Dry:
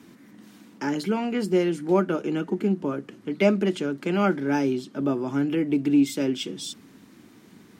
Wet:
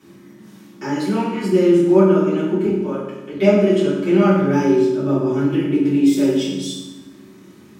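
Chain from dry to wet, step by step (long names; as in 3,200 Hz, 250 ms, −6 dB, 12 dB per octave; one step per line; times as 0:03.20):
0:02.66–0:03.33: high-pass filter 490 Hz 6 dB per octave
convolution reverb RT60 1.1 s, pre-delay 3 ms, DRR −9.5 dB
level −5 dB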